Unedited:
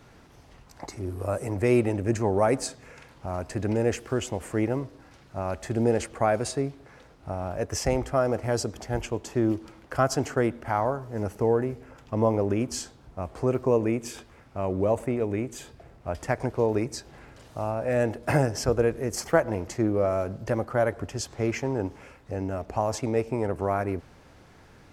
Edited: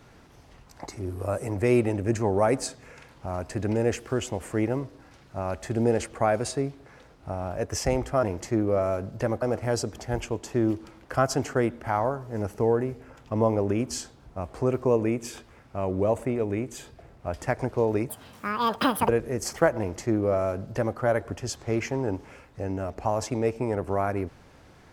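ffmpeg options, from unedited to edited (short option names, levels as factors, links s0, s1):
-filter_complex "[0:a]asplit=5[s0][s1][s2][s3][s4];[s0]atrim=end=8.232[s5];[s1]atrim=start=19.498:end=20.692[s6];[s2]atrim=start=8.228:end=16.904[s7];[s3]atrim=start=16.9:end=18.8,asetpts=PTS-STARTPTS,asetrate=84231,aresample=44100,atrim=end_sample=43869,asetpts=PTS-STARTPTS[s8];[s4]atrim=start=18.796[s9];[s5][s6]acrossfade=d=0.004:c1=hsin:c2=hsin[s10];[s10][s7]acrossfade=d=0.004:c1=hsin:c2=hsin[s11];[s11][s8]acrossfade=d=0.004:c1=hsin:c2=hsin[s12];[s12][s9]acrossfade=d=0.004:c1=hsin:c2=hsin"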